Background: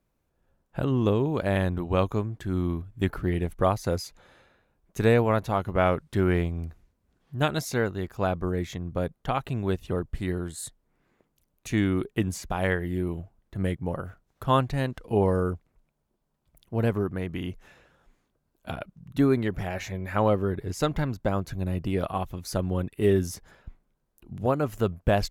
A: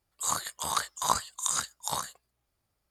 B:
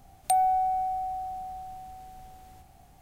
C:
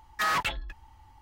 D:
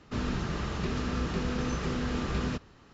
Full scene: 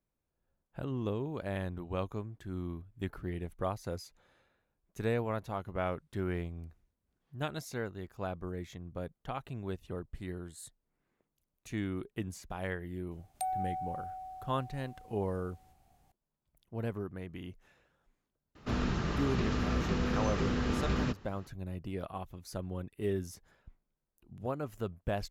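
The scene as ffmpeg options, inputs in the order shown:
ffmpeg -i bed.wav -i cue0.wav -i cue1.wav -i cue2.wav -i cue3.wav -filter_complex "[0:a]volume=-11.5dB[link_01];[4:a]highshelf=frequency=5000:gain=-3.5[link_02];[2:a]atrim=end=3.01,asetpts=PTS-STARTPTS,volume=-11.5dB,afade=type=in:duration=0.004:curve=hsin,afade=type=out:start_time=3.006:duration=0.004:curve=hsin,adelay=13110[link_03];[link_02]atrim=end=2.93,asetpts=PTS-STARTPTS,volume=-0.5dB,afade=type=in:duration=0.004:curve=hsin,afade=type=out:start_time=2.926:duration=0.004:curve=hsin,adelay=18550[link_04];[link_01][link_03][link_04]amix=inputs=3:normalize=0" out.wav

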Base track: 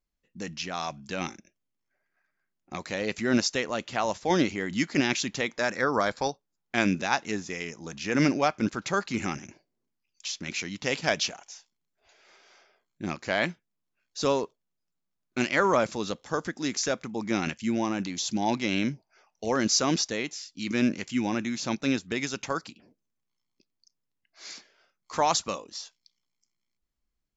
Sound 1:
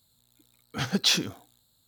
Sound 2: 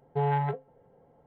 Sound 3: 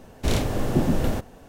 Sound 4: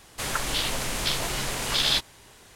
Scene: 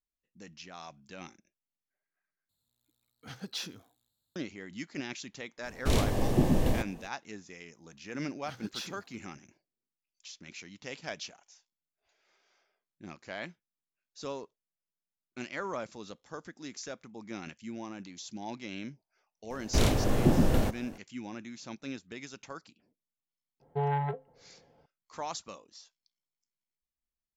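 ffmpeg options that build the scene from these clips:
ffmpeg -i bed.wav -i cue0.wav -i cue1.wav -i cue2.wav -filter_complex "[1:a]asplit=2[link_01][link_02];[3:a]asplit=2[link_03][link_04];[0:a]volume=-13.5dB[link_05];[link_03]bandreject=frequency=1400:width=5.3[link_06];[link_02]agate=range=-33dB:threshold=-60dB:ratio=3:release=100:detection=peak[link_07];[link_05]asplit=2[link_08][link_09];[link_08]atrim=end=2.494[link_10];[link_01]atrim=end=1.87,asetpts=PTS-STARTPTS,volume=-15.5dB[link_11];[link_09]atrim=start=4.356[link_12];[link_06]atrim=end=1.48,asetpts=PTS-STARTPTS,volume=-3.5dB,afade=type=in:duration=0.05,afade=type=out:start_time=1.43:duration=0.05,adelay=5620[link_13];[link_07]atrim=end=1.87,asetpts=PTS-STARTPTS,volume=-17.5dB,afade=type=in:duration=0.004:curve=hsin,afade=type=out:start_time=1.866:duration=0.004:curve=hsin,adelay=339570S[link_14];[link_04]atrim=end=1.48,asetpts=PTS-STARTPTS,volume=-2dB,afade=type=in:duration=0.004:curve=hsin,afade=type=out:start_time=1.476:duration=0.004:curve=hsin,adelay=19500[link_15];[2:a]atrim=end=1.26,asetpts=PTS-STARTPTS,volume=-3dB,afade=type=in:duration=0.004:curve=hsin,afade=type=out:start_time=1.256:duration=0.004:curve=hsin,adelay=23600[link_16];[link_10][link_11]acrossfade=duration=0.004:curve1=hsin:curve2=hsin[link_17];[link_17][link_12]acrossfade=duration=0.004:curve1=hsin:curve2=hsin[link_18];[link_18][link_13][link_14][link_15][link_16]amix=inputs=5:normalize=0" out.wav

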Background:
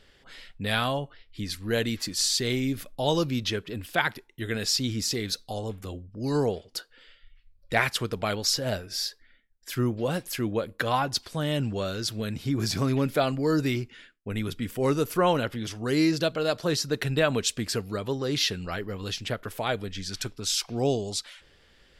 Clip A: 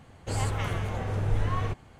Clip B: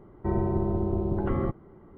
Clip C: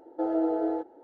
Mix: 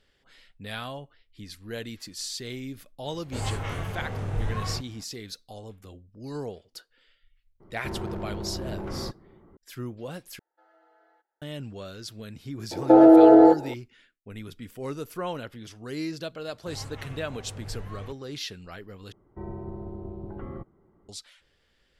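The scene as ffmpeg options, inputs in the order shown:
ffmpeg -i bed.wav -i cue0.wav -i cue1.wav -i cue2.wav -filter_complex "[1:a]asplit=2[link_01][link_02];[2:a]asplit=2[link_03][link_04];[3:a]asplit=2[link_05][link_06];[0:a]volume=-9.5dB[link_07];[link_01]asplit=2[link_08][link_09];[link_09]adelay=27,volume=-3dB[link_10];[link_08][link_10]amix=inputs=2:normalize=0[link_11];[link_03]asoftclip=type=hard:threshold=-27.5dB[link_12];[link_05]highpass=frequency=1700:width_type=q:width=1.9[link_13];[link_06]alimiter=level_in=21dB:limit=-1dB:release=50:level=0:latency=1[link_14];[link_07]asplit=3[link_15][link_16][link_17];[link_15]atrim=end=10.394[link_18];[link_13]atrim=end=1.03,asetpts=PTS-STARTPTS,volume=-17dB[link_19];[link_16]atrim=start=11.416:end=19.124[link_20];[link_04]atrim=end=1.97,asetpts=PTS-STARTPTS,volume=-11dB[link_21];[link_17]atrim=start=21.086[link_22];[link_11]atrim=end=1.99,asetpts=PTS-STARTPTS,volume=-3.5dB,afade=type=in:duration=0.004:curve=hsin,afade=type=out:start_time=1.986:duration=0.004:curve=hsin,adelay=134505S[link_23];[link_12]atrim=end=1.97,asetpts=PTS-STARTPTS,volume=-3.5dB,afade=type=in:duration=0.004:curve=hsin,afade=type=out:start_time=1.966:duration=0.004:curve=hsin,adelay=7600[link_24];[link_14]atrim=end=1.03,asetpts=PTS-STARTPTS,volume=-4dB,afade=type=in:duration=0.004:curve=hsin,afade=type=out:start_time=1.026:duration=0.004:curve=hsin,adelay=12710[link_25];[link_02]atrim=end=1.99,asetpts=PTS-STARTPTS,volume=-12dB,afade=type=in:duration=0.004:curve=hsin,afade=type=out:start_time=1.986:duration=0.004:curve=hsin,adelay=16390[link_26];[link_18][link_19]acrossfade=duration=0.004:curve1=hsin:curve2=hsin[link_27];[link_27][link_20]acrossfade=duration=0.004:curve1=hsin:curve2=hsin[link_28];[link_28][link_21]acrossfade=duration=0.004:curve1=hsin:curve2=hsin[link_29];[link_29][link_22]acrossfade=duration=0.004:curve1=hsin:curve2=hsin[link_30];[link_30][link_23][link_24][link_25][link_26]amix=inputs=5:normalize=0" out.wav

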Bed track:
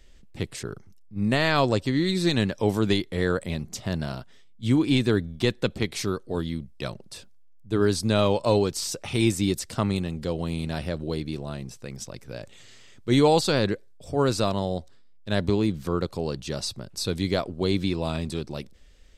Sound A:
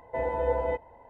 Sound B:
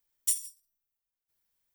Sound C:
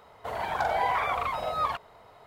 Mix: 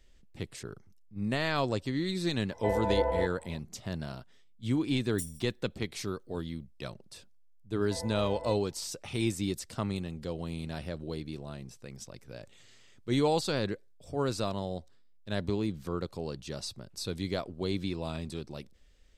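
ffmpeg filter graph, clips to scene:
ffmpeg -i bed.wav -i cue0.wav -i cue1.wav -filter_complex "[1:a]asplit=2[link_01][link_02];[0:a]volume=-8dB[link_03];[link_01]atrim=end=1.09,asetpts=PTS-STARTPTS,volume=-1dB,afade=type=in:duration=0.004:curve=hsin,afade=type=out:start_time=1.086:duration=0.004:curve=hsin,adelay=2500[link_04];[2:a]atrim=end=1.74,asetpts=PTS-STARTPTS,volume=-12.5dB,afade=type=in:duration=0.004:curve=hsin,afade=type=out:start_time=1.736:duration=0.004:curve=hsin,adelay=4910[link_05];[link_02]atrim=end=1.09,asetpts=PTS-STARTPTS,volume=-13dB,afade=type=in:duration=0.004:curve=hsin,afade=type=out:start_time=1.086:duration=0.004:curve=hsin,adelay=7770[link_06];[link_03][link_04][link_05][link_06]amix=inputs=4:normalize=0" out.wav

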